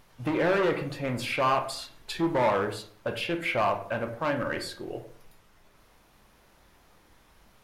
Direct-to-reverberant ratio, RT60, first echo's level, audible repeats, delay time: 6.0 dB, 0.50 s, no echo, no echo, no echo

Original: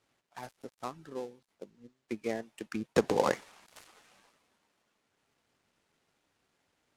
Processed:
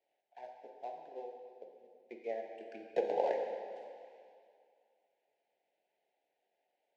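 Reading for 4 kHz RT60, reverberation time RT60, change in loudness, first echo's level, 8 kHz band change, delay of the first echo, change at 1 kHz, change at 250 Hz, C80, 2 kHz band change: 1.8 s, 2.3 s, -5.0 dB, no echo, under -20 dB, no echo, -3.5 dB, -15.0 dB, 4.5 dB, -11.0 dB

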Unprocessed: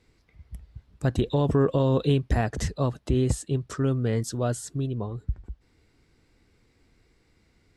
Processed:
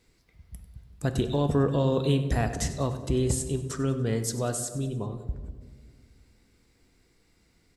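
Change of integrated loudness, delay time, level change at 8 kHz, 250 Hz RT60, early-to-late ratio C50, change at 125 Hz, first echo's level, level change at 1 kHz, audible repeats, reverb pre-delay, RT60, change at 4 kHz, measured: -1.5 dB, 96 ms, +5.0 dB, 2.6 s, 9.5 dB, -2.5 dB, -15.5 dB, -1.5 dB, 4, 3 ms, 1.6 s, +1.0 dB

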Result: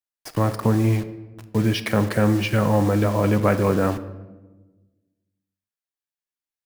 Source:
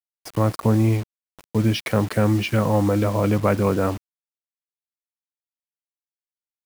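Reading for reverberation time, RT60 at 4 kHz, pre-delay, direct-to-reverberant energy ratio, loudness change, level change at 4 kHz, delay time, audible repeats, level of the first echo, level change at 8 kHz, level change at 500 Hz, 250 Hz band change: 1.2 s, 0.70 s, 3 ms, 10.0 dB, 0.0 dB, +0.5 dB, no echo, no echo, no echo, 0.0 dB, 0.0 dB, +0.5 dB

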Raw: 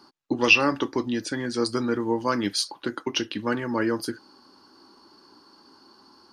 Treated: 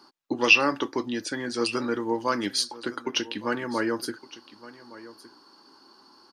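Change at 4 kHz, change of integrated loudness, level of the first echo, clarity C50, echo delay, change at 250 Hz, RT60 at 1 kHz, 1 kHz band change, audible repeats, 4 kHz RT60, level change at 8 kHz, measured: 0.0 dB, -1.0 dB, -18.0 dB, no reverb, 1164 ms, -3.0 dB, no reverb, -0.5 dB, 1, no reverb, 0.0 dB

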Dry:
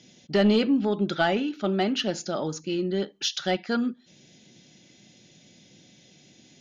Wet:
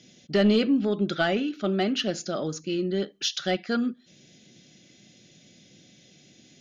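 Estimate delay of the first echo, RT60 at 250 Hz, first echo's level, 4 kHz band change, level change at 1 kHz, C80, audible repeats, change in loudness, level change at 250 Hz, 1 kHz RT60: no echo, no reverb, no echo, 0.0 dB, -3.0 dB, no reverb, no echo, 0.0 dB, 0.0 dB, no reverb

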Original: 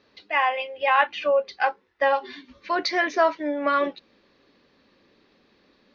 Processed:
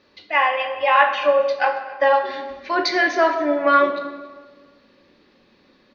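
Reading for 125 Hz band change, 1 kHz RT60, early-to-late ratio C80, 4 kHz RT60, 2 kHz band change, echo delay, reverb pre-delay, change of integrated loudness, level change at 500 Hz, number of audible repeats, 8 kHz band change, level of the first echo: no reading, 1.4 s, 9.0 dB, 0.95 s, +5.0 dB, 276 ms, 3 ms, +5.0 dB, +5.5 dB, 1, no reading, -21.5 dB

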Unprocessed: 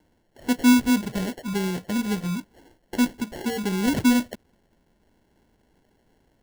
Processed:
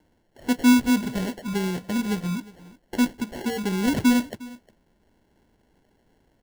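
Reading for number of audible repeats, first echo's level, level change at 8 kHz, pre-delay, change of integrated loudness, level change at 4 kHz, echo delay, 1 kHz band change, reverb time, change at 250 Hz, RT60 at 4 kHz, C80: 1, -20.5 dB, -1.5 dB, no reverb, 0.0 dB, -0.5 dB, 357 ms, 0.0 dB, no reverb, 0.0 dB, no reverb, no reverb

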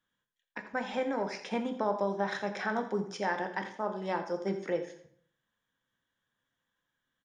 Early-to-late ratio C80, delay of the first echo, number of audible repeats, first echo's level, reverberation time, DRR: 11.5 dB, 84 ms, 1, -14.0 dB, 0.60 s, 5.5 dB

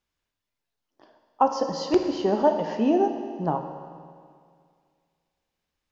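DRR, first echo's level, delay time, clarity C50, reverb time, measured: 4.5 dB, no echo, no echo, 6.0 dB, 2.1 s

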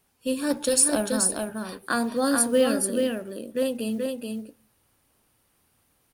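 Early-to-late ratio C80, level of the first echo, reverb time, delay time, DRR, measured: no reverb, -4.0 dB, no reverb, 430 ms, no reverb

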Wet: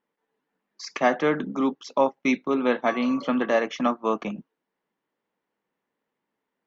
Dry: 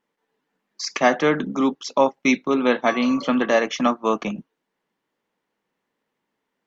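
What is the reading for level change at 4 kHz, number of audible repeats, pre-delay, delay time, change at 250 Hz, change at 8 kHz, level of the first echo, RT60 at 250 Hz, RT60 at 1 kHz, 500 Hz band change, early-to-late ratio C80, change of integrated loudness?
-7.5 dB, no echo, no reverb, no echo, -4.0 dB, no reading, no echo, no reverb, no reverb, -3.5 dB, no reverb, -3.5 dB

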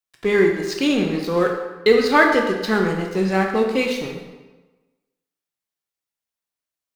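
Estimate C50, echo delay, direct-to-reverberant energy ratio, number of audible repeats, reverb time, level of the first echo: 4.5 dB, no echo, 1.5 dB, no echo, 1.2 s, no echo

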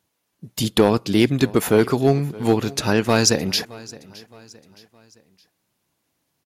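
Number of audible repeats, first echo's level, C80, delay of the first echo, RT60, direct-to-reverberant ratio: 2, -21.0 dB, no reverb, 617 ms, no reverb, no reverb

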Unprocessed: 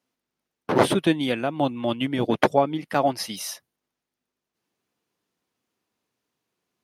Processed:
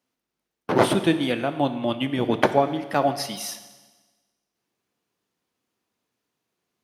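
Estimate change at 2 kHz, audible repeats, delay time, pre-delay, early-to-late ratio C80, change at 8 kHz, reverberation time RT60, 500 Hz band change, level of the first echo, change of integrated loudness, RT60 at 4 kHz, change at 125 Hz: +0.5 dB, no echo, no echo, 21 ms, 13.0 dB, +0.5 dB, 1.3 s, +0.5 dB, no echo, 0.0 dB, 1.3 s, +0.5 dB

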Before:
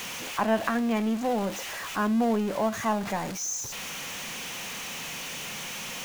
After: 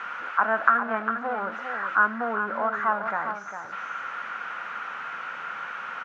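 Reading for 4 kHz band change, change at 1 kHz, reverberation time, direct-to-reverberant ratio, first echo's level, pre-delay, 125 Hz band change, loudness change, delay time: -13.0 dB, +6.0 dB, no reverb, no reverb, -8.0 dB, no reverb, under -10 dB, +2.0 dB, 403 ms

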